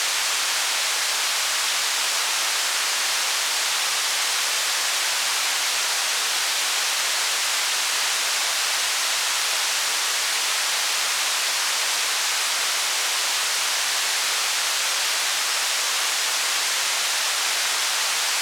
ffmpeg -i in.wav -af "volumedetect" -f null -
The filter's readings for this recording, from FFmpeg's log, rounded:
mean_volume: -23.2 dB
max_volume: -9.4 dB